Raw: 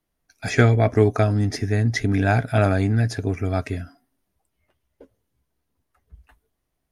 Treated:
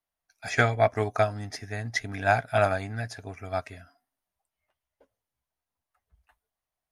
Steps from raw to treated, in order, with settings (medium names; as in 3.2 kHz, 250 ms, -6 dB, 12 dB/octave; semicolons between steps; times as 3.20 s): resonant low shelf 510 Hz -9 dB, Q 1.5; upward expansion 1.5:1, over -34 dBFS